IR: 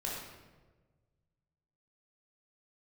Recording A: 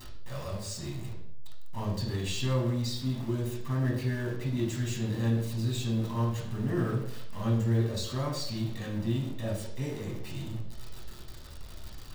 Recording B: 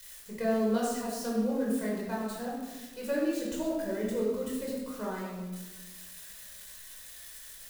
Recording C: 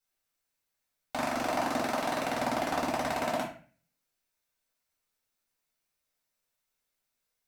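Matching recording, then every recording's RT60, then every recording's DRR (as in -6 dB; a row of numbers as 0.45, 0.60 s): B; 0.70, 1.3, 0.40 s; -3.5, -4.5, -6.0 dB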